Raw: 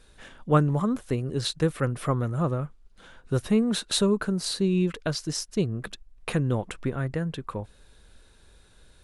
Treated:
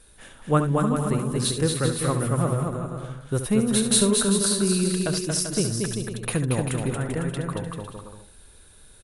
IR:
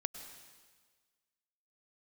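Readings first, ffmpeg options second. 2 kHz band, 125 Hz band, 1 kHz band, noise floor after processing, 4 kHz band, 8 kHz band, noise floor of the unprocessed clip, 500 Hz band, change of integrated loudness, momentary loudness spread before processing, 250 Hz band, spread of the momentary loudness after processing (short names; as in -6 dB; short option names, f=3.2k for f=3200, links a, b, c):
+3.0 dB, +2.5 dB, +2.5 dB, -51 dBFS, +3.5 dB, +12.0 dB, -56 dBFS, +2.5 dB, +3.0 dB, 12 LU, +2.5 dB, 12 LU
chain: -filter_complex "[0:a]equalizer=f=9.9k:w=2:g=15,aecho=1:1:230|391|503.7|582.6|637.8:0.631|0.398|0.251|0.158|0.1,asplit=2[a][b];[1:a]atrim=start_sample=2205,atrim=end_sample=3528,adelay=70[c];[b][c]afir=irnorm=-1:irlink=0,volume=-8.5dB[d];[a][d]amix=inputs=2:normalize=0"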